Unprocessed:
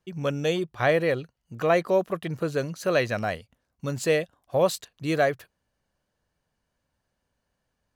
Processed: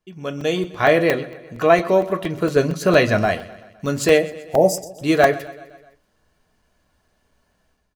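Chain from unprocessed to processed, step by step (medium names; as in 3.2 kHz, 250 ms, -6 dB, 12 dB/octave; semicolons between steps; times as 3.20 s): 2.56–3.26 s: bass shelf 330 Hz +6.5 dB; 4.19–4.91 s: time-frequency box 920–4700 Hz -28 dB; level rider gain up to 14 dB; feedback delay 127 ms, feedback 57%, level -18.5 dB; reverberation RT60 0.20 s, pre-delay 3 ms, DRR 4.5 dB; crackling interface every 0.23 s, samples 128, zero, from 0.41 s; trim -2.5 dB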